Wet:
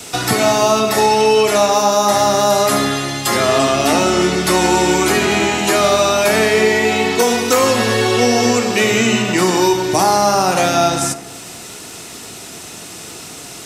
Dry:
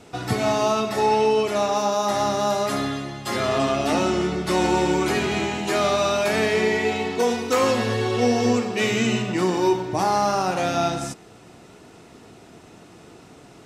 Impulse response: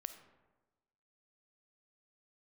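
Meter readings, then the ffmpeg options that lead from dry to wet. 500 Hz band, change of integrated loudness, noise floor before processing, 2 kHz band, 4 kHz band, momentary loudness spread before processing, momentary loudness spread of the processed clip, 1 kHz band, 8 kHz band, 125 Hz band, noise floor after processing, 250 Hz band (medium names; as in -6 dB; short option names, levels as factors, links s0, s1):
+7.5 dB, +8.0 dB, -47 dBFS, +9.5 dB, +10.5 dB, 4 LU, 18 LU, +8.0 dB, +14.0 dB, +5.5 dB, -33 dBFS, +6.5 dB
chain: -filter_complex "[0:a]acrossover=split=150|1000|2200[s0][s1][s2][s3];[s0]acompressor=threshold=0.0126:ratio=4[s4];[s1]acompressor=threshold=0.0891:ratio=4[s5];[s2]acompressor=threshold=0.0158:ratio=4[s6];[s3]acompressor=threshold=0.00501:ratio=4[s7];[s4][s5][s6][s7]amix=inputs=4:normalize=0,crystalizer=i=7.5:c=0,asplit=2[s8][s9];[1:a]atrim=start_sample=2205[s10];[s9][s10]afir=irnorm=-1:irlink=0,volume=2.24[s11];[s8][s11]amix=inputs=2:normalize=0"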